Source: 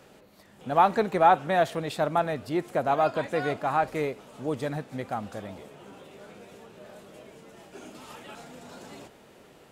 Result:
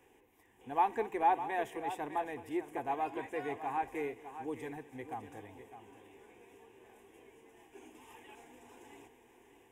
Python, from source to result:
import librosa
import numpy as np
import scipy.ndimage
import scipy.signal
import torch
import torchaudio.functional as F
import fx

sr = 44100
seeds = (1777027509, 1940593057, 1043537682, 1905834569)

y = fx.fixed_phaser(x, sr, hz=890.0, stages=8)
y = fx.echo_multitap(y, sr, ms=(214, 605), db=(-19.0, -11.5))
y = y * librosa.db_to_amplitude(-7.5)